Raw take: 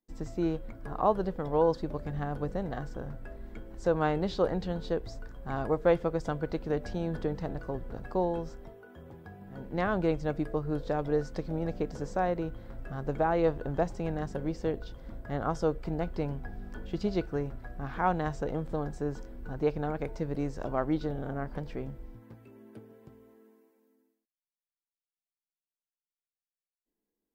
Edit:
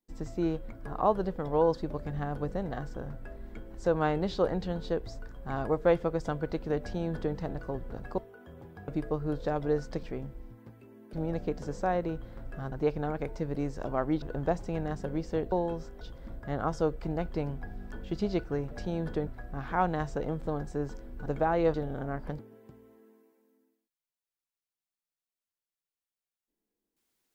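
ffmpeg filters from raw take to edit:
-filter_complex "[0:a]asplit=14[s0][s1][s2][s3][s4][s5][s6][s7][s8][s9][s10][s11][s12][s13];[s0]atrim=end=8.182[s14];[s1]atrim=start=8.668:end=9.372[s15];[s2]atrim=start=10.308:end=11.462[s16];[s3]atrim=start=21.668:end=22.772[s17];[s4]atrim=start=11.458:end=13.052[s18];[s5]atrim=start=19.518:end=21.022[s19];[s6]atrim=start=13.528:end=14.832[s20];[s7]atrim=start=8.178:end=8.672[s21];[s8]atrim=start=14.828:end=17.532[s22];[s9]atrim=start=6.788:end=7.352[s23];[s10]atrim=start=17.528:end=19.522[s24];[s11]atrim=start=13.048:end=13.532[s25];[s12]atrim=start=21.018:end=21.672[s26];[s13]atrim=start=22.768[s27];[s14][s15]acrossfade=d=0.004:c1=hsin:c2=hsin[s28];[s28][s16]acrossfade=d=0.004:c1=hsin:c2=hsin[s29];[s29][s17]acrossfade=d=0.004:c1=hsin:c2=hsin[s30];[s30][s18]acrossfade=d=0.004:c1=hsin:c2=hsin[s31];[s31][s19]acrossfade=d=0.004:c1=hsin:c2=hsin[s32];[s32][s20]acrossfade=d=0.004:c1=hsin:c2=hsin[s33];[s33][s21]acrossfade=d=0.004:c1=hsin:c2=hsin[s34];[s34][s22]acrossfade=d=0.004:c1=hsin:c2=hsin[s35];[s35][s23]acrossfade=d=0.004:c1=hsin:c2=hsin[s36];[s36][s24]acrossfade=d=0.004:c1=hsin:c2=hsin[s37];[s37][s25]acrossfade=d=0.004:c1=hsin:c2=hsin[s38];[s38][s26]acrossfade=d=0.004:c1=hsin:c2=hsin[s39];[s39][s27]acrossfade=d=0.004:c1=hsin:c2=hsin"

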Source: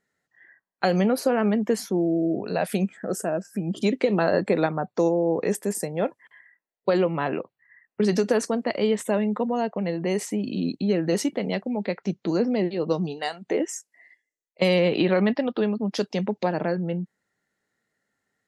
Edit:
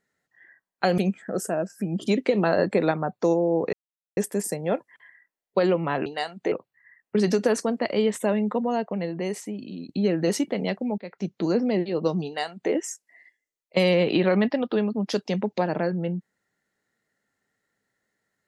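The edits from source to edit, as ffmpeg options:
-filter_complex "[0:a]asplit=7[s0][s1][s2][s3][s4][s5][s6];[s0]atrim=end=0.982[s7];[s1]atrim=start=2.728:end=5.48,asetpts=PTS-STARTPTS,afade=t=out:st=2.748:d=0.004:c=hsin,apad=pad_dur=0.44[s8];[s2]atrim=start=5.48:end=7.372,asetpts=PTS-STARTPTS,afade=t=in:d=0.004:c=hsin[s9];[s3]atrim=start=13.108:end=13.572[s10];[s4]atrim=start=7.368:end=10.74,asetpts=PTS-STARTPTS,afade=t=out:st=2.212:d=1.16:silence=0.237137[s11];[s5]atrim=start=10.74:end=11.83,asetpts=PTS-STARTPTS,afade=t=in:d=0.004:c=hsin:silence=0.237137,afade=t=out:st=1.086:d=0.004:c=hsin:silence=0.0944061[s12];[s6]atrim=start=11.83,asetpts=PTS-STARTPTS,afade=t=in:d=0.51:c=qsin:silence=0.0944061[s13];[s8][s9]concat=n=2:v=0:a=1[s14];[s7][s14]acrossfade=d=0.004:c1=hsin:c2=hsin[s15];[s15][s10]acrossfade=d=0.004:c1=hsin:c2=hsin[s16];[s11][s12][s13]concat=n=3:v=0:a=1[s17];[s16][s17]acrossfade=d=0.004:c1=hsin:c2=hsin"

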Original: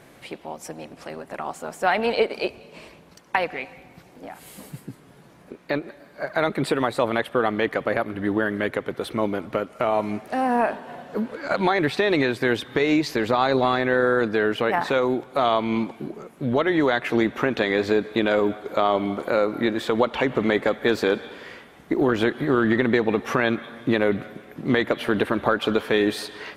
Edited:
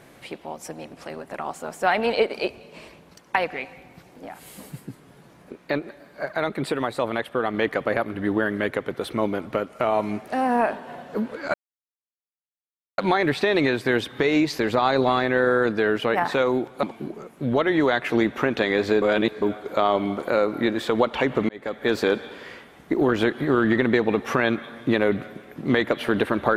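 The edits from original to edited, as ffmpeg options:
-filter_complex "[0:a]asplit=8[s0][s1][s2][s3][s4][s5][s6][s7];[s0]atrim=end=6.322[s8];[s1]atrim=start=6.318:end=7.542,asetpts=PTS-STARTPTS,volume=0.708[s9];[s2]atrim=start=7.538:end=11.54,asetpts=PTS-STARTPTS,afade=t=out:st=3.998:d=0.004:c=hsin,apad=pad_dur=1.44[s10];[s3]atrim=start=11.54:end=15.392,asetpts=PTS-STARTPTS,afade=t=in:d=0.004:c=hsin[s11];[s4]atrim=start=15.828:end=18.022[s12];[s5]atrim=start=18.018:end=18.422,asetpts=PTS-STARTPTS,areverse[s13];[s6]atrim=start=18.418:end=20.49,asetpts=PTS-STARTPTS,afade=t=out:st=2.068:d=0.004:c=hsin[s14];[s7]atrim=start=20.49,asetpts=PTS-STARTPTS,afade=t=in:d=0.48[s15];[s8][s9]acrossfade=d=0.004:c1=hsin:c2=hsin[s16];[s10][s11]concat=n=2:v=0:a=1[s17];[s16][s17]acrossfade=d=0.004:c1=hsin:c2=hsin[s18];[s18][s12]acrossfade=d=0.004:c1=hsin:c2=hsin[s19];[s19][s13]acrossfade=d=0.004:c1=hsin:c2=hsin[s20];[s14][s15]concat=n=2:v=0:a=1[s21];[s20][s21]acrossfade=d=0.004:c1=hsin:c2=hsin"

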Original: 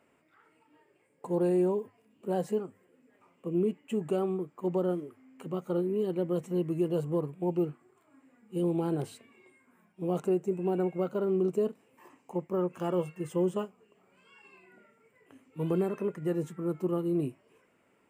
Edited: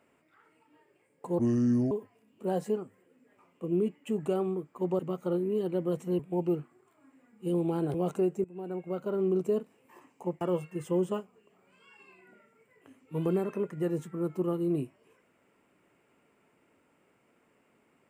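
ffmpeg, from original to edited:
-filter_complex "[0:a]asplit=8[s0][s1][s2][s3][s4][s5][s6][s7];[s0]atrim=end=1.394[s8];[s1]atrim=start=1.39:end=1.74,asetpts=PTS-STARTPTS,asetrate=29547,aresample=44100,atrim=end_sample=23037,asetpts=PTS-STARTPTS[s9];[s2]atrim=start=1.736:end=4.822[s10];[s3]atrim=start=5.428:end=6.632[s11];[s4]atrim=start=7.288:end=9.042[s12];[s5]atrim=start=10.028:end=10.53,asetpts=PTS-STARTPTS,afade=t=out:st=0.498:d=0.004:c=hsin:silence=0.11885[s13];[s6]atrim=start=10.53:end=12.502,asetpts=PTS-STARTPTS,afade=t=in:d=0.81:silence=0.11885[s14];[s7]atrim=start=12.858[s15];[s8][s9]acrossfade=d=0.004:c1=hsin:c2=hsin[s16];[s16][s10]acrossfade=d=0.004:c1=hsin:c2=hsin[s17];[s17][s11]acrossfade=d=0.004:c1=hsin:c2=hsin[s18];[s18][s12]acrossfade=d=0.004:c1=hsin:c2=hsin[s19];[s13][s14]concat=n=2:v=0:a=1[s20];[s19][s20]acrossfade=d=0.004:c1=hsin:c2=hsin[s21];[s21][s15]acrossfade=d=0.004:c1=hsin:c2=hsin"

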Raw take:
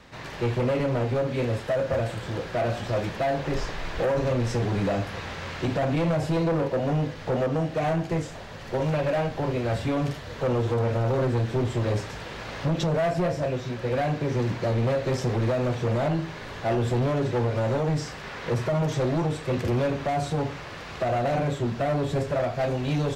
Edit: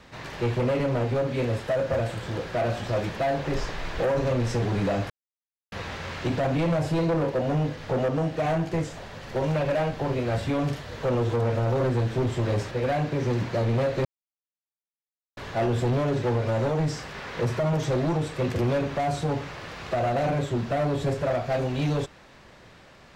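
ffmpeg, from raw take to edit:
-filter_complex "[0:a]asplit=5[s0][s1][s2][s3][s4];[s0]atrim=end=5.1,asetpts=PTS-STARTPTS,afade=t=out:st=5.096:d=0.004:c=hsin,apad=pad_dur=0.62[s5];[s1]atrim=start=5.1:end=12.092,asetpts=PTS-STARTPTS,afade=t=in:d=0.004:c=hsin[s6];[s2]atrim=start=13.798:end=15.14,asetpts=PTS-STARTPTS,afade=t=out:st=1.338:d=0.004:c=hsin[s7];[s3]atrim=start=15.14:end=16.46,asetpts=PTS-STARTPTS,volume=0[s8];[s4]atrim=start=16.46,asetpts=PTS-STARTPTS,afade=t=in:d=0.004:c=hsin[s9];[s5][s6]concat=n=2:v=0:a=1[s10];[s7][s8][s9]concat=n=3:v=0:a=1[s11];[s10][s11]acrossfade=d=0.004:c1=hsin:c2=hsin"

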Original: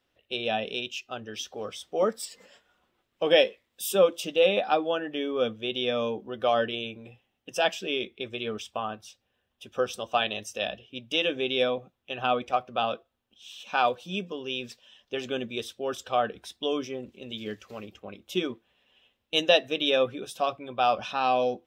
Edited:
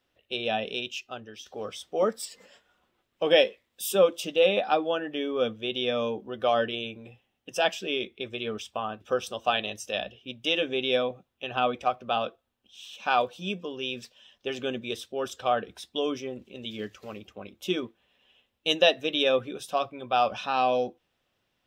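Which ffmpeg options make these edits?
-filter_complex "[0:a]asplit=3[s0][s1][s2];[s0]atrim=end=1.46,asetpts=PTS-STARTPTS,afade=t=out:st=1.02:d=0.44:silence=0.266073[s3];[s1]atrim=start=1.46:end=9.012,asetpts=PTS-STARTPTS,afade=t=in:d=0.004:c=hsin:silence=0.266073[s4];[s2]atrim=start=9.678[s5];[s3][s4]concat=n=2:v=0:a=1[s6];[s6][s5]acrossfade=d=0.004:c1=hsin:c2=hsin"

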